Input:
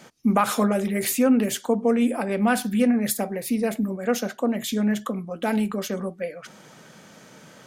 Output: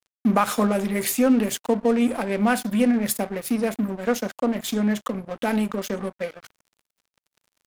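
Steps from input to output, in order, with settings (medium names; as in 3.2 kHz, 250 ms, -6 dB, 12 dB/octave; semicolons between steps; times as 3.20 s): in parallel at -1.5 dB: compression 5:1, threshold -32 dBFS, peak gain reduction 15.5 dB; on the sum: crossover distortion -34 dBFS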